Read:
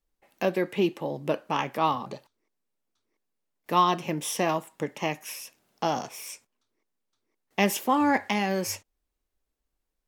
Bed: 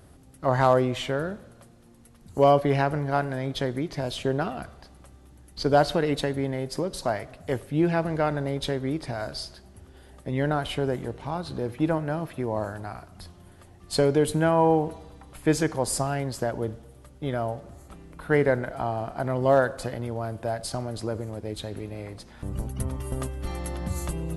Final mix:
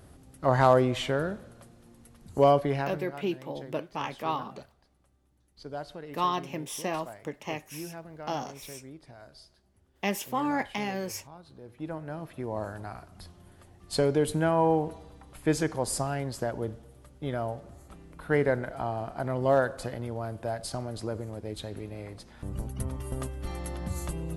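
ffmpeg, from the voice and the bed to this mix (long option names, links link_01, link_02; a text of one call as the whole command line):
ffmpeg -i stem1.wav -i stem2.wav -filter_complex "[0:a]adelay=2450,volume=-6dB[link_01];[1:a]volume=14dB,afade=type=out:start_time=2.3:duration=0.83:silence=0.133352,afade=type=in:start_time=11.63:duration=1.17:silence=0.188365[link_02];[link_01][link_02]amix=inputs=2:normalize=0" out.wav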